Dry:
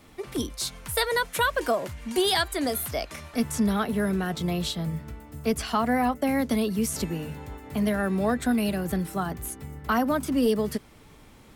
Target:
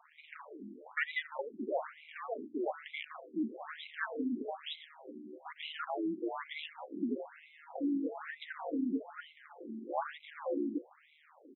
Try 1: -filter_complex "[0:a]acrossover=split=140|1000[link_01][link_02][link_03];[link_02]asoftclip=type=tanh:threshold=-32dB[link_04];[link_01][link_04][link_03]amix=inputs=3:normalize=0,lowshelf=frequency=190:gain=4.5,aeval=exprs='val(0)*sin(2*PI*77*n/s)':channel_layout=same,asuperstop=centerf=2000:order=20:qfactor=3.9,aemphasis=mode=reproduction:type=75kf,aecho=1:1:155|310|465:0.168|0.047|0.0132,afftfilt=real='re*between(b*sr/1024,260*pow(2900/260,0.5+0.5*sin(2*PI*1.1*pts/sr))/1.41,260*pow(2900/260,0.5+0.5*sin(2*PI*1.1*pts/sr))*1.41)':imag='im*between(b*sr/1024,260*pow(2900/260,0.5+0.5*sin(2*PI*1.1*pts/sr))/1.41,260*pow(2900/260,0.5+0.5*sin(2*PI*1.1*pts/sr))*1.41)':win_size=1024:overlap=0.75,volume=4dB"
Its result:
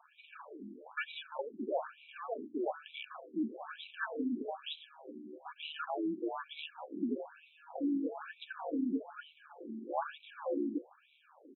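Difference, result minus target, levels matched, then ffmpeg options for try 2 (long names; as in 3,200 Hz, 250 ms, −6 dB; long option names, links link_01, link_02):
2,000 Hz band −3.0 dB
-filter_complex "[0:a]acrossover=split=140|1000[link_01][link_02][link_03];[link_02]asoftclip=type=tanh:threshold=-32dB[link_04];[link_01][link_04][link_03]amix=inputs=3:normalize=0,lowshelf=frequency=190:gain=4.5,aeval=exprs='val(0)*sin(2*PI*77*n/s)':channel_layout=same,asuperstop=centerf=5300:order=20:qfactor=3.9,aemphasis=mode=reproduction:type=75kf,aecho=1:1:155|310|465:0.168|0.047|0.0132,afftfilt=real='re*between(b*sr/1024,260*pow(2900/260,0.5+0.5*sin(2*PI*1.1*pts/sr))/1.41,260*pow(2900/260,0.5+0.5*sin(2*PI*1.1*pts/sr))*1.41)':imag='im*between(b*sr/1024,260*pow(2900/260,0.5+0.5*sin(2*PI*1.1*pts/sr))/1.41,260*pow(2900/260,0.5+0.5*sin(2*PI*1.1*pts/sr))*1.41)':win_size=1024:overlap=0.75,volume=4dB"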